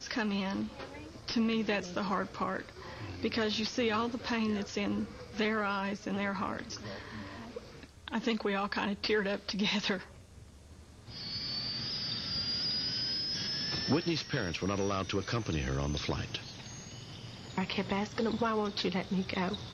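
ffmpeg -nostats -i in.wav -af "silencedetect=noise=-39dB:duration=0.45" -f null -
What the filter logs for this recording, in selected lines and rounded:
silence_start: 10.03
silence_end: 11.09 | silence_duration: 1.06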